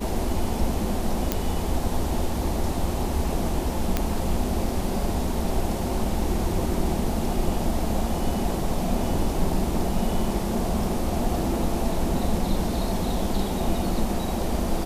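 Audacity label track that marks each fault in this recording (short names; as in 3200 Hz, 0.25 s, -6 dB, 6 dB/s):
1.320000	1.320000	pop -7 dBFS
3.970000	3.970000	pop -8 dBFS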